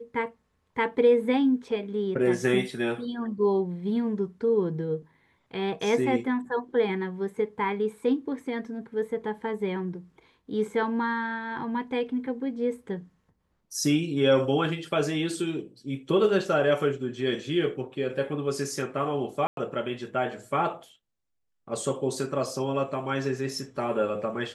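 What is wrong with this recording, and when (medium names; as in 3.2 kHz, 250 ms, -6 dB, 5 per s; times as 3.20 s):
19.47–19.57 s: dropout 102 ms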